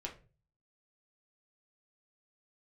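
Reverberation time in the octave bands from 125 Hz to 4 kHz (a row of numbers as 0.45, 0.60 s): 0.65, 0.45, 0.40, 0.30, 0.30, 0.25 s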